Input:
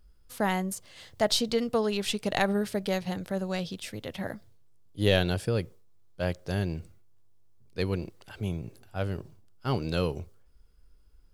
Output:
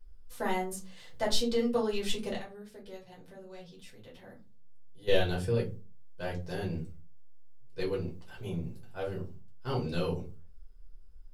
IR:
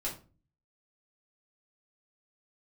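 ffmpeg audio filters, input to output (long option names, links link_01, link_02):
-filter_complex "[0:a]asplit=3[link_01][link_02][link_03];[link_01]afade=type=out:start_time=2.34:duration=0.02[link_04];[link_02]acompressor=threshold=-53dB:ratio=2,afade=type=in:start_time=2.34:duration=0.02,afade=type=out:start_time=5.07:duration=0.02[link_05];[link_03]afade=type=in:start_time=5.07:duration=0.02[link_06];[link_04][link_05][link_06]amix=inputs=3:normalize=0[link_07];[1:a]atrim=start_sample=2205,asetrate=61740,aresample=44100[link_08];[link_07][link_08]afir=irnorm=-1:irlink=0,volume=-3.5dB"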